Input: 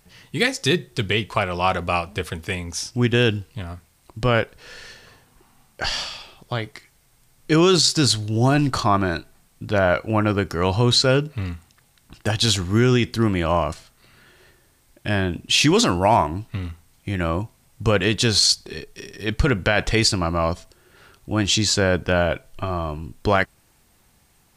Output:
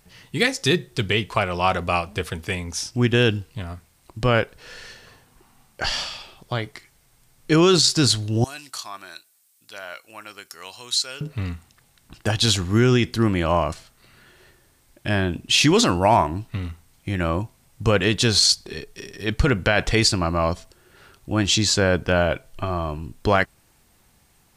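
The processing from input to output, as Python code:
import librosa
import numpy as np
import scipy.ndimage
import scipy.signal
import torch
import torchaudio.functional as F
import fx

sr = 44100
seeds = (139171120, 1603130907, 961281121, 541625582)

y = fx.differentiator(x, sr, at=(8.44, 11.21))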